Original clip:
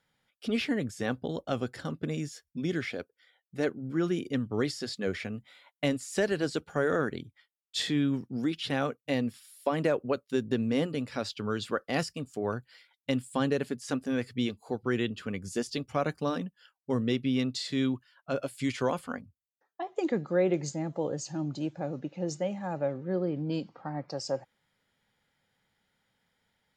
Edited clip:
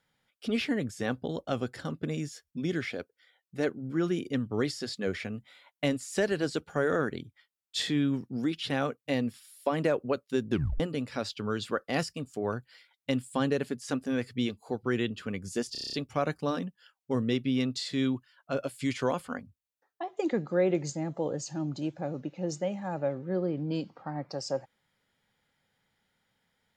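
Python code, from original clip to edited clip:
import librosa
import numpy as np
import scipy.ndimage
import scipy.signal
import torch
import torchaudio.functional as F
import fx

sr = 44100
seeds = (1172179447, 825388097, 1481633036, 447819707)

y = fx.edit(x, sr, fx.tape_stop(start_s=10.51, length_s=0.29),
    fx.stutter(start_s=15.72, slice_s=0.03, count=8), tone=tone)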